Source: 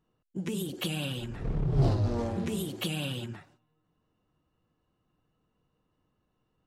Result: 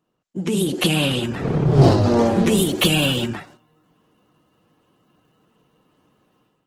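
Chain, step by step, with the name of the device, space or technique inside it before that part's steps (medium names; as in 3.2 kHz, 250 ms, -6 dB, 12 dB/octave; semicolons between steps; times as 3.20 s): video call (high-pass 160 Hz 12 dB/octave; level rider gain up to 12 dB; trim +4.5 dB; Opus 16 kbps 48 kHz)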